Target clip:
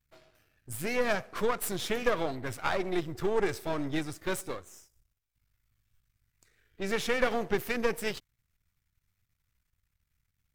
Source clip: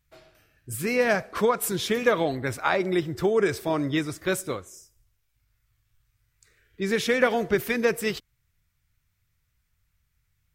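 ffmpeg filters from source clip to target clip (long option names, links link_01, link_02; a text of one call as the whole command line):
ffmpeg -i in.wav -af "aeval=exprs='if(lt(val(0),0),0.251*val(0),val(0))':channel_layout=same,volume=-2.5dB" out.wav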